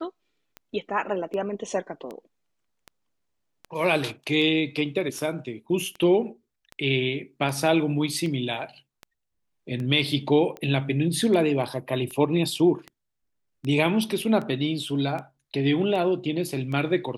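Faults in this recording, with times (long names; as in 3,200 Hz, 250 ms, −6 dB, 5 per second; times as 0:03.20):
scratch tick 78 rpm −23 dBFS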